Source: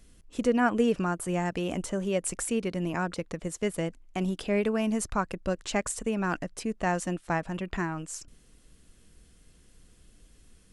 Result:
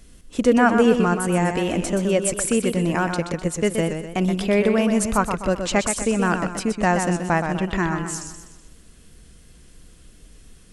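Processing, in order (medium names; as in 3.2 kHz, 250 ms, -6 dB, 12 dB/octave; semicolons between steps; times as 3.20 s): modulated delay 125 ms, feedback 46%, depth 96 cents, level -7 dB; trim +8 dB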